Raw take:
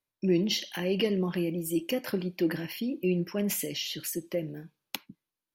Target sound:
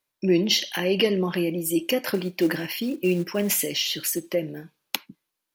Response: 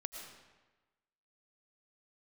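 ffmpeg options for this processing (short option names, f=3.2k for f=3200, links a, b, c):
-filter_complex "[0:a]lowshelf=f=250:g=-9,asettb=1/sr,asplit=3[a][b][c];[a]atrim=end=2.144[d];[b]atrim=start=2.14:end=4.34,asetpts=PTS-STARTPTS,afade=t=in:d=0.004:c=qsin,afade=t=out:st=2.196:d=0.004:c=qsin,acrusher=bits=6:mode=log:mix=0:aa=0.000001[e];[c]atrim=start=4.336[f];[d][e]acrossfade=d=0.004:c1=hsin:c2=qsin[g];[g][f]acrossfade=d=0.004:c1=qsin:c2=hsin,volume=8.5dB"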